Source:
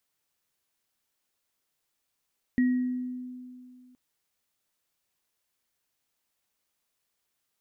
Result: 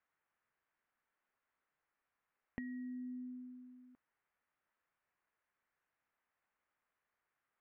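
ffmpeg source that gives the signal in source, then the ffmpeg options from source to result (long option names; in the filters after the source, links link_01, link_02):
-f lavfi -i "aevalsrc='0.112*pow(10,-3*t/2.35)*sin(2*PI*251*t)+0.0224*pow(10,-3*t/0.73)*sin(2*PI*1900*t)':duration=1.37:sample_rate=44100"
-af "lowpass=frequency=1800:width=0.5412,lowpass=frequency=1800:width=1.3066,tiltshelf=frequency=910:gain=-7,acompressor=threshold=-42dB:ratio=12"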